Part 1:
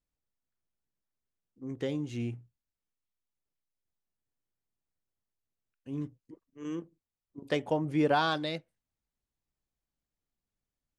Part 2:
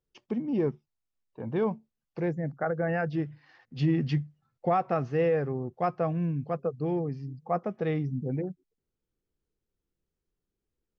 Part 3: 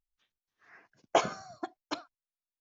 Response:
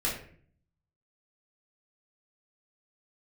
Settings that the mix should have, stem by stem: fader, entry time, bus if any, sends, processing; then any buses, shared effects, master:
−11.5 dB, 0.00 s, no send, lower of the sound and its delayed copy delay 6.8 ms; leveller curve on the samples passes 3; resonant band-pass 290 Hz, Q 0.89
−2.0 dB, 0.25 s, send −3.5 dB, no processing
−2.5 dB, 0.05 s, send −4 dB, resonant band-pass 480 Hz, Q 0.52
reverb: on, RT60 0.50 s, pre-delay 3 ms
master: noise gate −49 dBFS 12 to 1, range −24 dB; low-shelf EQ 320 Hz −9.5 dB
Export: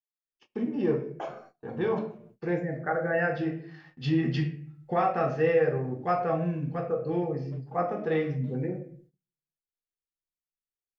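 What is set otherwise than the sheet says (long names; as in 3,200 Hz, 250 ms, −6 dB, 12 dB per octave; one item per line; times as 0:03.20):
stem 1 −11.5 dB → −20.5 dB
stem 3 −2.5 dB → −12.0 dB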